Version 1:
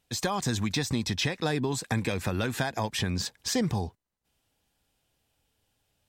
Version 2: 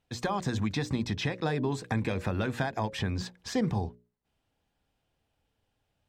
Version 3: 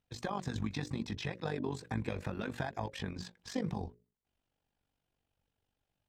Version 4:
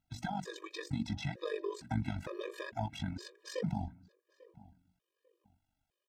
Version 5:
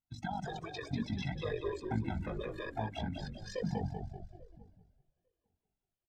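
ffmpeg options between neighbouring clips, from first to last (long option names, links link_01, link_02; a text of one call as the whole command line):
ffmpeg -i in.wav -af "lowpass=frequency=1900:poles=1,bandreject=frequency=60:width_type=h:width=6,bandreject=frequency=120:width_type=h:width=6,bandreject=frequency=180:width_type=h:width=6,bandreject=frequency=240:width_type=h:width=6,bandreject=frequency=300:width_type=h:width=6,bandreject=frequency=360:width_type=h:width=6,bandreject=frequency=420:width_type=h:width=6,bandreject=frequency=480:width_type=h:width=6,bandreject=frequency=540:width_type=h:width=6,bandreject=frequency=600:width_type=h:width=6" out.wav
ffmpeg -i in.wav -af "flanger=delay=0.5:depth=8.7:regen=-54:speed=0.73:shape=triangular,tremolo=f=48:d=0.75" out.wav
ffmpeg -i in.wav -filter_complex "[0:a]asplit=2[link_01][link_02];[link_02]adelay=845,lowpass=frequency=1500:poles=1,volume=-20dB,asplit=2[link_03][link_04];[link_04]adelay=845,lowpass=frequency=1500:poles=1,volume=0.26[link_05];[link_01][link_03][link_05]amix=inputs=3:normalize=0,afftfilt=real='re*gt(sin(2*PI*1.1*pts/sr)*(1-2*mod(floor(b*sr/1024/320),2)),0)':imag='im*gt(sin(2*PI*1.1*pts/sr)*(1-2*mod(floor(b*sr/1024/320),2)),0)':win_size=1024:overlap=0.75,volume=2.5dB" out.wav
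ffmpeg -i in.wav -filter_complex "[0:a]bandreject=frequency=50:width_type=h:width=6,bandreject=frequency=100:width_type=h:width=6,bandreject=frequency=150:width_type=h:width=6,bandreject=frequency=200:width_type=h:width=6,asplit=8[link_01][link_02][link_03][link_04][link_05][link_06][link_07][link_08];[link_02]adelay=193,afreqshift=-37,volume=-5dB[link_09];[link_03]adelay=386,afreqshift=-74,volume=-10.5dB[link_10];[link_04]adelay=579,afreqshift=-111,volume=-16dB[link_11];[link_05]adelay=772,afreqshift=-148,volume=-21.5dB[link_12];[link_06]adelay=965,afreqshift=-185,volume=-27.1dB[link_13];[link_07]adelay=1158,afreqshift=-222,volume=-32.6dB[link_14];[link_08]adelay=1351,afreqshift=-259,volume=-38.1dB[link_15];[link_01][link_09][link_10][link_11][link_12][link_13][link_14][link_15]amix=inputs=8:normalize=0,afftdn=noise_reduction=13:noise_floor=-48" out.wav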